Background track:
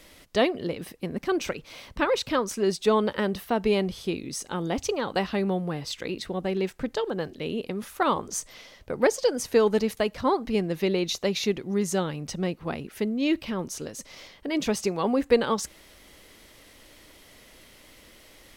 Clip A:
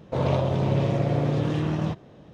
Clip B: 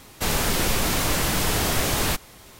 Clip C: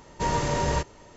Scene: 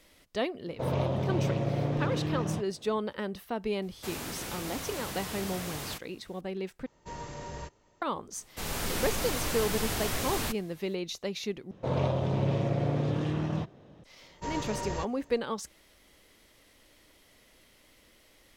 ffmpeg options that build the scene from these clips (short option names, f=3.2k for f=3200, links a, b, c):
-filter_complex "[1:a]asplit=2[a][b];[2:a]asplit=2[c][d];[3:a]asplit=2[e][f];[0:a]volume=-8.5dB[g];[c]highpass=62[h];[d]dynaudnorm=f=100:g=7:m=5dB[i];[g]asplit=3[j][k][l];[j]atrim=end=6.864[m];[e]atrim=end=1.16,asetpts=PTS-STARTPTS,volume=-15.5dB[n];[k]atrim=start=8.016:end=11.714[o];[b]atrim=end=2.33,asetpts=PTS-STARTPTS,volume=-5dB[p];[l]atrim=start=14.036[q];[a]atrim=end=2.33,asetpts=PTS-STARTPTS,volume=-6dB,afade=t=in:d=0.004:c=hsin,afade=t=out:st=2.326:d=0.004:c=hsin,adelay=670[r];[h]atrim=end=2.59,asetpts=PTS-STARTPTS,volume=-15dB,afade=t=in:d=0.004:c=hsin,afade=t=out:st=2.586:d=0.004:c=hsin,adelay=3820[s];[i]atrim=end=2.59,asetpts=PTS-STARTPTS,volume=-14dB,afade=t=in:d=0.004:c=hsin,afade=t=out:st=2.586:d=0.004:c=hsin,adelay=8360[t];[f]atrim=end=1.16,asetpts=PTS-STARTPTS,volume=-10dB,afade=t=in:d=0.004:c=hsin,afade=t=out:st=1.156:d=0.004:c=hsin,adelay=14220[u];[m][n]acrossfade=d=0.004:c1=hsin:c2=hsin[v];[v][o]acrossfade=d=0.004:c1=hsin:c2=hsin[w];[w][p]acrossfade=d=0.004:c1=hsin:c2=hsin[x];[x][q]acrossfade=d=0.004:c1=hsin:c2=hsin[y];[y][r][s][t][u]amix=inputs=5:normalize=0"